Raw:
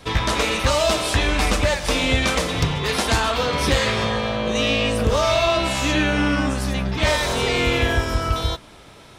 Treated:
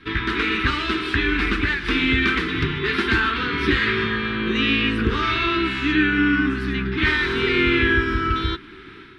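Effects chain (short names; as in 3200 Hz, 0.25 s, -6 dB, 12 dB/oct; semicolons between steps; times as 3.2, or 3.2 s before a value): EQ curve 150 Hz 0 dB, 230 Hz +5 dB, 380 Hz +12 dB, 570 Hz -25 dB, 1500 Hz +11 dB, 3900 Hz 0 dB, 6800 Hz -19 dB; AGC gain up to 9 dB; gain -6 dB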